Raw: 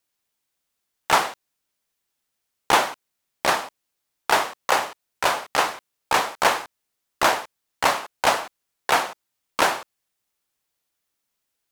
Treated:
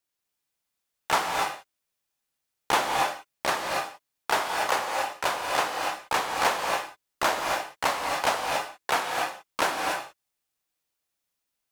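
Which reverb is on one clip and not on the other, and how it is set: gated-style reverb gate 310 ms rising, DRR 1 dB; trim -6 dB

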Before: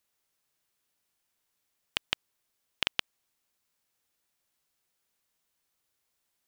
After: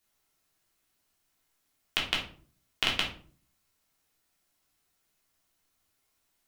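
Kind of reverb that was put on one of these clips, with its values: simulated room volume 340 m³, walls furnished, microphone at 3.3 m; trim -1 dB

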